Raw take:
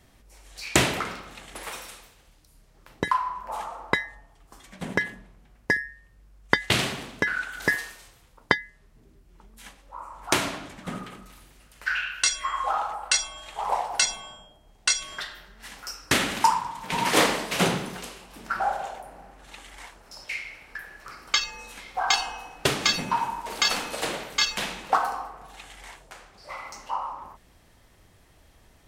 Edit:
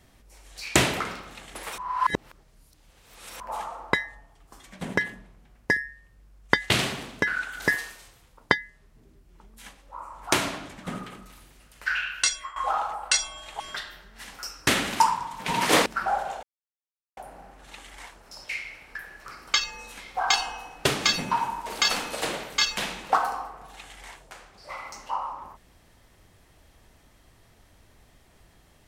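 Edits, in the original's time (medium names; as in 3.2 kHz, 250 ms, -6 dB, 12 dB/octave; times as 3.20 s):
1.78–3.40 s: reverse
12.23–12.56 s: fade out, to -18 dB
13.60–15.04 s: delete
17.30–18.40 s: delete
18.97 s: insert silence 0.74 s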